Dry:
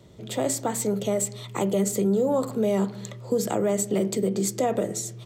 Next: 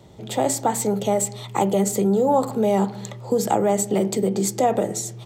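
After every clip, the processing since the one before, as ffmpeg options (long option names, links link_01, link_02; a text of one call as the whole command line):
ffmpeg -i in.wav -af "equalizer=frequency=820:width_type=o:width=0.28:gain=11.5,volume=3dB" out.wav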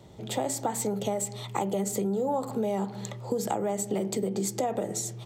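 ffmpeg -i in.wav -af "acompressor=threshold=-23dB:ratio=4,volume=-3dB" out.wav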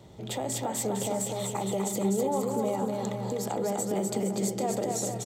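ffmpeg -i in.wav -af "alimiter=limit=-21.5dB:level=0:latency=1:release=131,aecho=1:1:250|462.5|643.1|796.7|927.2:0.631|0.398|0.251|0.158|0.1" out.wav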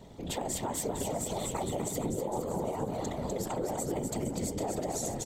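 ffmpeg -i in.wav -af "aeval=exprs='val(0)*sin(2*PI*44*n/s)':channel_layout=same,afftfilt=real='hypot(re,im)*cos(2*PI*random(0))':imag='hypot(re,im)*sin(2*PI*random(1))':win_size=512:overlap=0.75,acompressor=threshold=-38dB:ratio=6,volume=8.5dB" out.wav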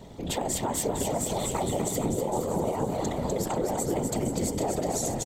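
ffmpeg -i in.wav -af "aecho=1:1:488|976|1464|1952:0.224|0.0918|0.0376|0.0154,volume=5dB" out.wav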